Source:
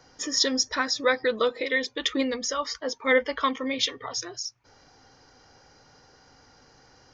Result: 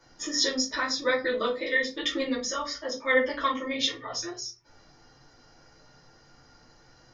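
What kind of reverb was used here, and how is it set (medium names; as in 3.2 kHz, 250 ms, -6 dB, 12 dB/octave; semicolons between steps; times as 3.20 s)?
simulated room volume 120 m³, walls furnished, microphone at 2.6 m; trim -8 dB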